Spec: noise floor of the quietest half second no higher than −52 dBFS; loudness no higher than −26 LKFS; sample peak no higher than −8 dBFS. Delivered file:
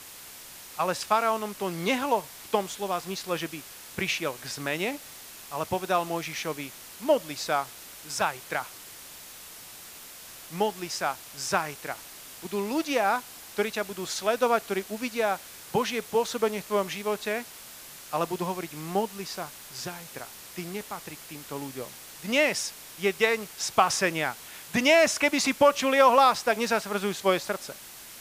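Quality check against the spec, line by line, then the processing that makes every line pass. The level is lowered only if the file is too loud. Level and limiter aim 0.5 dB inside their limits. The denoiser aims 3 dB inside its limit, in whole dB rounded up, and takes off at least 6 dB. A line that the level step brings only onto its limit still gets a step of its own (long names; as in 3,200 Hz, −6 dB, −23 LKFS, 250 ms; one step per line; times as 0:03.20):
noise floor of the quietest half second −45 dBFS: out of spec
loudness −27.5 LKFS: in spec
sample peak −6.0 dBFS: out of spec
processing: broadband denoise 10 dB, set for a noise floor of −45 dBFS
brickwall limiter −8.5 dBFS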